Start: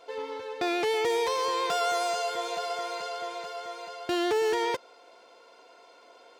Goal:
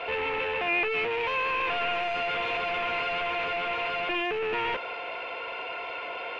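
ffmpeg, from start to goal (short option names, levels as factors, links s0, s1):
-filter_complex "[0:a]asplit=2[s0][s1];[s1]highpass=f=720:p=1,volume=50.1,asoftclip=type=tanh:threshold=0.133[s2];[s0][s2]amix=inputs=2:normalize=0,lowpass=f=1600:p=1,volume=0.501,aeval=exprs='clip(val(0),-1,0.0562)':c=same,lowpass=f=2600:t=q:w=5.8,volume=0.501"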